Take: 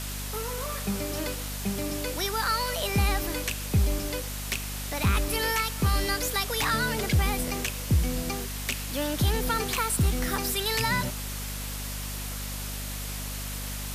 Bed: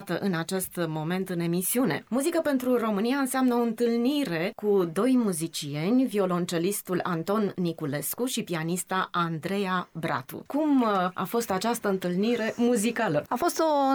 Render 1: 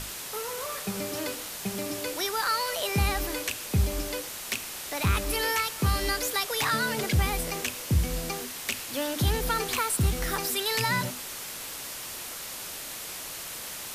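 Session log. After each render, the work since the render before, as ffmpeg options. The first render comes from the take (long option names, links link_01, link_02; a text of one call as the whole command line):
ffmpeg -i in.wav -af "bandreject=frequency=50:width_type=h:width=6,bandreject=frequency=100:width_type=h:width=6,bandreject=frequency=150:width_type=h:width=6,bandreject=frequency=200:width_type=h:width=6,bandreject=frequency=250:width_type=h:width=6,bandreject=frequency=300:width_type=h:width=6" out.wav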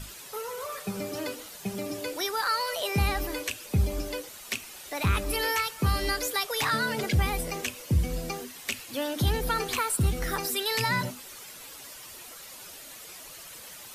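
ffmpeg -i in.wav -af "afftdn=noise_reduction=10:noise_floor=-39" out.wav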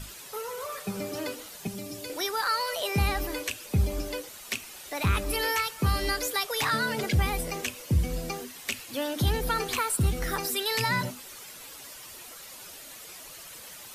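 ffmpeg -i in.wav -filter_complex "[0:a]asettb=1/sr,asplit=3[link_01][link_02][link_03];[link_01]atrim=end=1.674[link_04];[link_02]atrim=start=1.67:end=2.1,asetpts=PTS-STARTPTS,afade=type=in:duration=0.004:curve=qsin,afade=type=out:start_time=0.426:duration=0.004:curve=qsin,acrossover=split=220|3000[link_05][link_06][link_07];[link_06]acompressor=threshold=-46dB:ratio=2:attack=3.2:release=140:knee=2.83:detection=peak[link_08];[link_05][link_08][link_07]amix=inputs=3:normalize=0[link_09];[link_03]atrim=start=2.096[link_10];[link_04][link_09]acrossfade=duration=0.004:curve1=hsin:curve2=qsin[link_11];[link_11][link_10]acrossfade=duration=0.004:curve1=qsin:curve2=hsin" out.wav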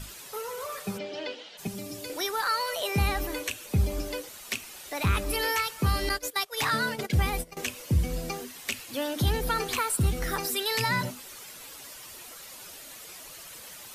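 ffmpeg -i in.wav -filter_complex "[0:a]asplit=3[link_01][link_02][link_03];[link_01]afade=type=out:start_time=0.97:duration=0.02[link_04];[link_02]highpass=260,equalizer=frequency=290:width_type=q:width=4:gain=-6,equalizer=frequency=1200:width_type=q:width=4:gain=-9,equalizer=frequency=3100:width_type=q:width=4:gain=7,lowpass=frequency=4800:width=0.5412,lowpass=frequency=4800:width=1.3066,afade=type=in:start_time=0.97:duration=0.02,afade=type=out:start_time=1.57:duration=0.02[link_05];[link_03]afade=type=in:start_time=1.57:duration=0.02[link_06];[link_04][link_05][link_06]amix=inputs=3:normalize=0,asettb=1/sr,asplit=3[link_07][link_08][link_09];[link_07]atrim=end=2.234[link_10];[link_08]atrim=start=2.23:end=3.7,asetpts=PTS-STARTPTS,afade=type=in:duration=0.004:curve=qsin,afade=type=out:start_time=1.466:duration=0.004:curve=qsin,bandreject=frequency=4900:width=12[link_11];[link_09]atrim=start=3.696[link_12];[link_10][link_11]acrossfade=duration=0.004:curve1=hsin:curve2=qsin[link_13];[link_13][link_12]acrossfade=duration=0.004:curve1=qsin:curve2=hsin,asettb=1/sr,asplit=3[link_14][link_15][link_16];[link_14]atrim=end=6.094[link_17];[link_15]atrim=start=6.09:end=7.57,asetpts=PTS-STARTPTS,afade=type=in:duration=0.004:curve=qsin,afade=type=out:start_time=1.476:duration=0.004:curve=qsin,agate=range=-19dB:threshold=-31dB:ratio=16:release=100:detection=peak[link_18];[link_16]atrim=start=7.566[link_19];[link_17][link_18]acrossfade=duration=0.004:curve1=hsin:curve2=qsin[link_20];[link_20][link_19]acrossfade=duration=0.004:curve1=qsin:curve2=hsin" out.wav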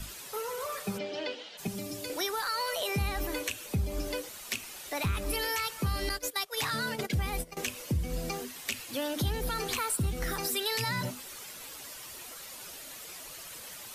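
ffmpeg -i in.wav -filter_complex "[0:a]acrossover=split=170|3000[link_01][link_02][link_03];[link_02]alimiter=level_in=1dB:limit=-24dB:level=0:latency=1,volume=-1dB[link_04];[link_01][link_04][link_03]amix=inputs=3:normalize=0,acompressor=threshold=-28dB:ratio=3" out.wav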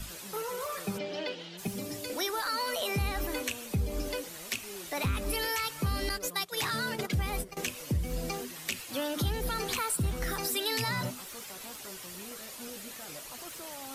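ffmpeg -i in.wav -i bed.wav -filter_complex "[1:a]volume=-23dB[link_01];[0:a][link_01]amix=inputs=2:normalize=0" out.wav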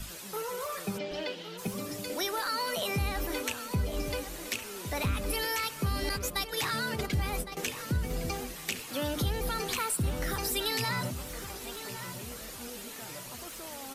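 ffmpeg -i in.wav -filter_complex "[0:a]asplit=2[link_01][link_02];[link_02]adelay=1111,lowpass=frequency=3000:poles=1,volume=-10dB,asplit=2[link_03][link_04];[link_04]adelay=1111,lowpass=frequency=3000:poles=1,volume=0.42,asplit=2[link_05][link_06];[link_06]adelay=1111,lowpass=frequency=3000:poles=1,volume=0.42,asplit=2[link_07][link_08];[link_08]adelay=1111,lowpass=frequency=3000:poles=1,volume=0.42[link_09];[link_01][link_03][link_05][link_07][link_09]amix=inputs=5:normalize=0" out.wav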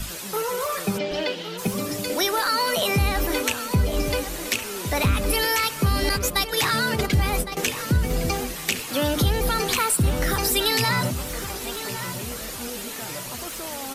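ffmpeg -i in.wav -af "volume=9.5dB" out.wav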